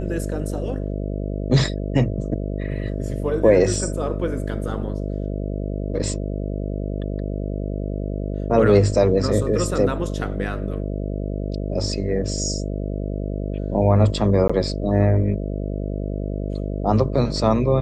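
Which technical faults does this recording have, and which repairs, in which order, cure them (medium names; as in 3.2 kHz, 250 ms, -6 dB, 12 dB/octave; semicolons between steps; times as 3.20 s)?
buzz 50 Hz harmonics 13 -26 dBFS
14.48–14.49 s: dropout 15 ms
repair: de-hum 50 Hz, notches 13; interpolate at 14.48 s, 15 ms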